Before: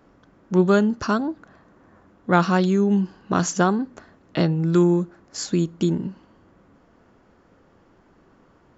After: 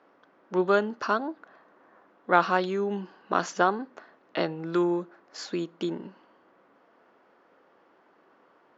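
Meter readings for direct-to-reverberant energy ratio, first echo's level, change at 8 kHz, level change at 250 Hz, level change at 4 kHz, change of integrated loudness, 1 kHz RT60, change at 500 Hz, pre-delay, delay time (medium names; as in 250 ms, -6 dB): no reverb, no echo, no reading, -11.0 dB, -4.5 dB, -6.5 dB, no reverb, -4.5 dB, no reverb, no echo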